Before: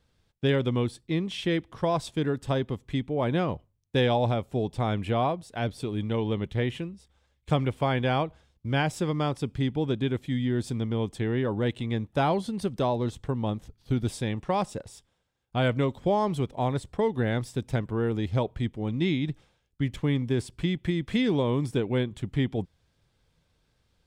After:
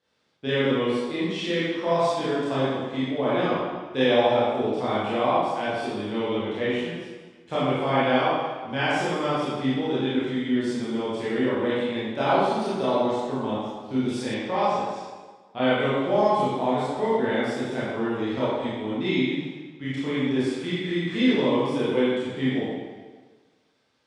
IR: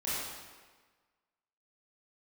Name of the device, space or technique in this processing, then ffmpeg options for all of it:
supermarket ceiling speaker: -filter_complex "[0:a]highpass=210,lowpass=6.9k,lowshelf=f=250:g=-4.5[a];[1:a]atrim=start_sample=2205[b];[a][b]afir=irnorm=-1:irlink=0,asettb=1/sr,asplit=3[c][d][e];[c]atrim=end=14.344[f];[d]atrim=start=14.34:end=15.8,asetpts=PTS-STARTPTS,afade=t=in:d=0.004:c=qsin,afade=t=out:st=1.456:d=0.004:c=qsin,lowpass=5.8k[g];[e]atrim=start=15.796[h];[f][g]acrossfade=d=0.004:c1=hsin:c2=qsin[i];[i][h]acrossfade=d=0.004:c1=qsin:c2=hsin"

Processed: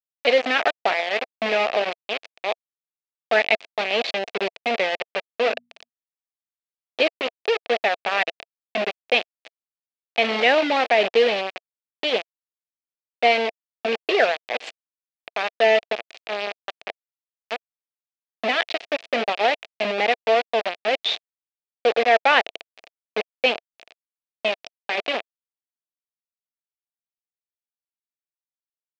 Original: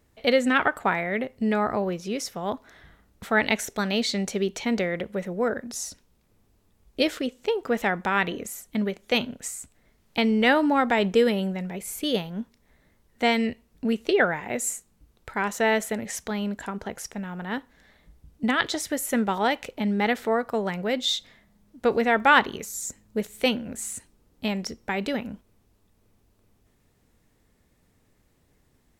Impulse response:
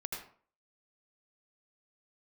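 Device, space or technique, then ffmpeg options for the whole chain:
hand-held game console: -filter_complex "[0:a]acrusher=bits=3:mix=0:aa=0.000001,highpass=460,equalizer=f=470:t=q:w=4:g=3,equalizer=f=670:t=q:w=4:g=8,equalizer=f=990:t=q:w=4:g=-7,equalizer=f=1.4k:t=q:w=4:g=-6,equalizer=f=2.5k:t=q:w=4:g=6,lowpass=f=4.1k:w=0.5412,lowpass=f=4.1k:w=1.3066,asplit=3[a][b][c];[a]afade=t=out:st=5.43:d=0.02[d];[b]bandreject=f=60:t=h:w=6,bandreject=f=120:t=h:w=6,bandreject=f=180:t=h:w=6,bandreject=f=240:t=h:w=6,afade=t=in:st=5.43:d=0.02,afade=t=out:st=5.88:d=0.02[e];[c]afade=t=in:st=5.88:d=0.02[f];[d][e][f]amix=inputs=3:normalize=0,volume=2dB"

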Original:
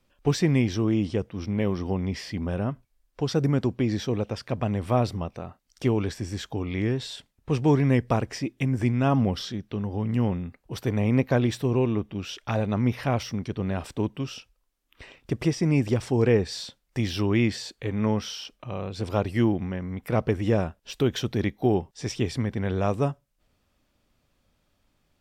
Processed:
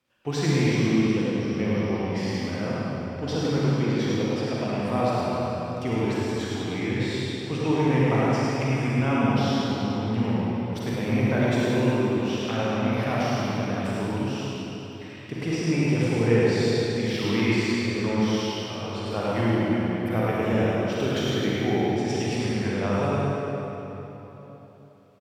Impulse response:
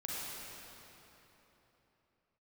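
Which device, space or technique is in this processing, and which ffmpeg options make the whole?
PA in a hall: -filter_complex "[0:a]highpass=110,equalizer=f=2.1k:t=o:w=2.4:g=4.5,aecho=1:1:105:0.596[a];[1:a]atrim=start_sample=2205[b];[a][b]afir=irnorm=-1:irlink=0,volume=-2.5dB"

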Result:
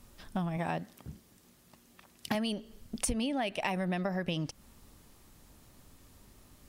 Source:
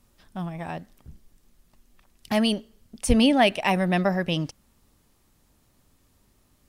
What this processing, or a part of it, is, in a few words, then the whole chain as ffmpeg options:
serial compression, leveller first: -filter_complex "[0:a]acompressor=threshold=-24dB:ratio=2.5,acompressor=threshold=-35dB:ratio=8,asettb=1/sr,asplit=3[a][b][c];[a]atrim=end=0.574[d];[b]atrim=start=0.57:end=2.35,asetpts=PTS-STARTPTS,afade=t=in:d=0.004:c=qsin,afade=t=out:st=1.776:d=0.004:c=qsin,highpass=110[e];[c]atrim=start=2.346[f];[d][e]acrossfade=d=0.004:c1=hsin:c2=qsin[g];[g][f]acrossfade=d=0.004:c1=qsin:c2=hsin,volume=5.5dB"

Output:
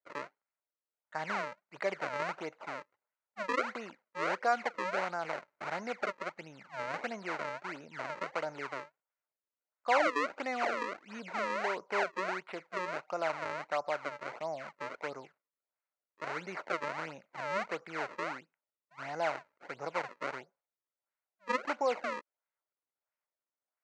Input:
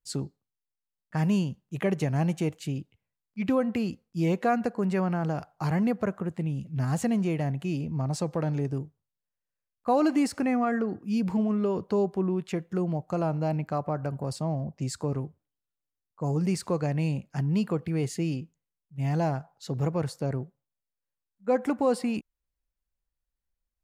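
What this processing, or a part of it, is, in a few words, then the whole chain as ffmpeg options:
circuit-bent sampling toy: -af "acrusher=samples=34:mix=1:aa=0.000001:lfo=1:lforange=54.4:lforate=1.5,highpass=540,equalizer=f=600:t=q:w=4:g=6,equalizer=f=920:t=q:w=4:g=5,equalizer=f=1.4k:t=q:w=4:g=8,equalizer=f=2.1k:t=q:w=4:g=7,equalizer=f=3.4k:t=q:w=4:g=-9,equalizer=f=5.2k:t=q:w=4:g=-7,lowpass=f=5.6k:w=0.5412,lowpass=f=5.6k:w=1.3066,volume=-5.5dB"

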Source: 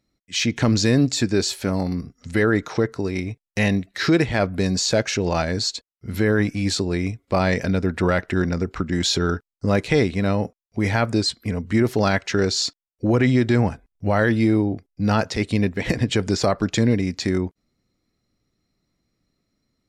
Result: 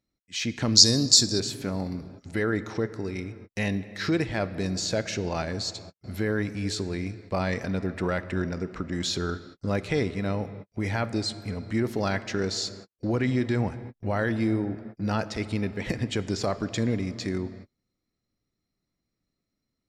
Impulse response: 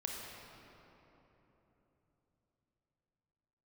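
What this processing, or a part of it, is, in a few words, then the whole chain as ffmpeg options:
keyed gated reverb: -filter_complex "[0:a]asplit=3[a][b][c];[1:a]atrim=start_sample=2205[d];[b][d]afir=irnorm=-1:irlink=0[e];[c]apad=whole_len=876727[f];[e][f]sidechaingate=range=-60dB:threshold=-45dB:ratio=16:detection=peak,volume=-10.5dB[g];[a][g]amix=inputs=2:normalize=0,asettb=1/sr,asplit=3[h][i][j];[h]atrim=end=0.754[k];[i]atrim=start=0.75:end=1.4,asetpts=PTS-STARTPTS,afade=t=in:d=0.004:c=qsin,afade=t=out:st=0.646:d=0.004:c=qsin,highshelf=f=3.4k:t=q:w=3:g=12.5[l];[j]atrim=start=1.396[m];[k][l]acrossfade=d=0.004:c1=hsin:c2=qsin[n];[n][m]acrossfade=d=0.004:c1=qsin:c2=hsin,volume=-9.5dB"

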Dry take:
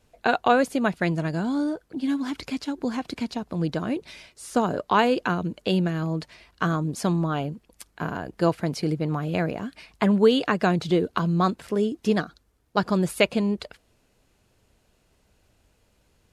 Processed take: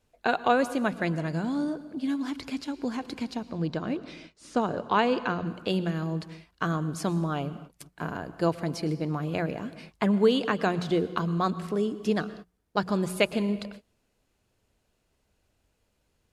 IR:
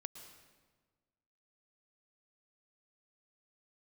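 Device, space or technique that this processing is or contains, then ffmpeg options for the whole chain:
keyed gated reverb: -filter_complex "[0:a]asettb=1/sr,asplit=3[a][b][c];[a]atrim=end=3.504[d];[b]atrim=start=3.5:end=5.47,asetpts=PTS-STARTPTS,afade=t=in:d=0.004:c=qsin,afade=t=out:st=1.966:d=0.004:c=qsin,lowpass=5.9k[e];[c]atrim=start=5.466[f];[d][e]acrossfade=d=0.004:c1=hsin:c2=qsin[g];[g][f]acrossfade=d=0.004:c1=qsin:c2=hsin,asplit=3[h][i][j];[1:a]atrim=start_sample=2205[k];[i][k]afir=irnorm=-1:irlink=0[l];[j]apad=whole_len=719830[m];[l][m]sidechaingate=range=-33dB:threshold=-48dB:ratio=16:detection=peak,volume=1dB[n];[h][n]amix=inputs=2:normalize=0,bandreject=f=60:t=h:w=6,bandreject=f=120:t=h:w=6,bandreject=f=180:t=h:w=6,volume=-8dB"

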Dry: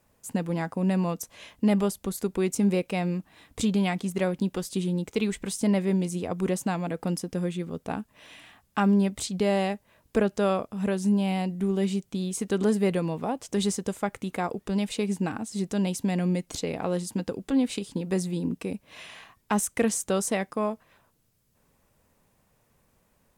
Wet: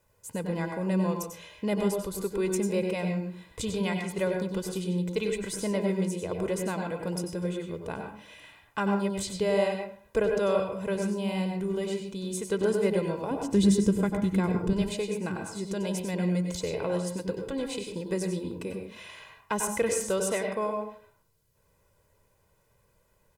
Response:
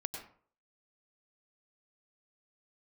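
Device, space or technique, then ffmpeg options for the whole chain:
microphone above a desk: -filter_complex "[0:a]asettb=1/sr,asplit=3[a][b][c];[a]atrim=end=13.314[d];[b]atrim=start=13.31:end=14.73,asetpts=PTS-STARTPTS,afade=t=in:d=0.004:c=qsin,afade=t=out:st=1.416:d=0.004:c=qsin,lowshelf=f=380:t=q:w=1.5:g=10.5[e];[c]atrim=start=14.726[f];[d][e]acrossfade=d=0.004:c1=hsin:c2=qsin[g];[g][f]acrossfade=d=0.004:c1=qsin:c2=hsin,aecho=1:1:2:0.6[h];[1:a]atrim=start_sample=2205[i];[h][i]afir=irnorm=-1:irlink=0,volume=-2.5dB"

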